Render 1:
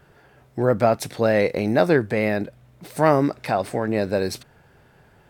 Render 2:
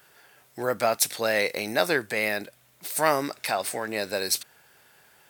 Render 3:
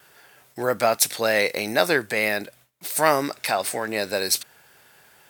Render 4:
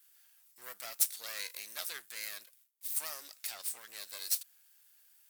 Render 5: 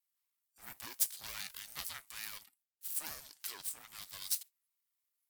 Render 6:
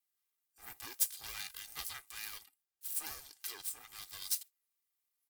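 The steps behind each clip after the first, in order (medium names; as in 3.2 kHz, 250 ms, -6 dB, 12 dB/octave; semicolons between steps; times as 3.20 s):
tilt EQ +4.5 dB/octave; trim -3 dB
gate with hold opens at -47 dBFS; trim +3.5 dB
half-wave rectifier; differentiator; trim -5.5 dB
spectral noise reduction 19 dB; ring modulator with a swept carrier 450 Hz, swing 35%, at 3.8 Hz
comb 2.5 ms, depth 53%; trim -1 dB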